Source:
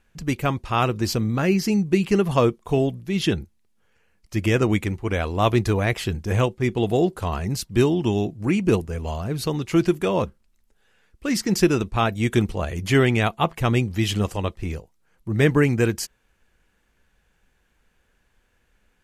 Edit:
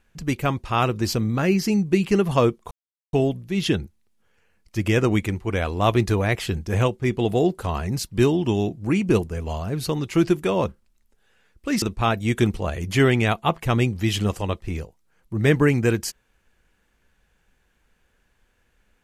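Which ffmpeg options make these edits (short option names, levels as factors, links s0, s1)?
-filter_complex "[0:a]asplit=3[s0][s1][s2];[s0]atrim=end=2.71,asetpts=PTS-STARTPTS,afade=t=out:st=2.706:d=0.004:c=hsin,apad=pad_dur=0.42[s3];[s1]atrim=start=2.71:end=11.402,asetpts=PTS-STARTPTS,afade=t=in:d=0.004:c=hsin[s4];[s2]atrim=start=11.768[s5];[s3][s4]concat=n=2:v=0:a=1[s6];[s6][s5]acrossfade=d=0.004:c1=hsin:c2=hsin"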